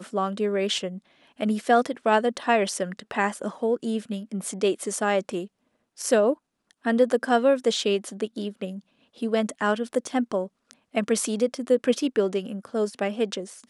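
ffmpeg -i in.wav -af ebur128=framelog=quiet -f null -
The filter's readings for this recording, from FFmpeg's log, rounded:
Integrated loudness:
  I:         -25.5 LUFS
  Threshold: -35.9 LUFS
Loudness range:
  LRA:         3.4 LU
  Threshold: -45.9 LUFS
  LRA low:   -28.0 LUFS
  LRA high:  -24.6 LUFS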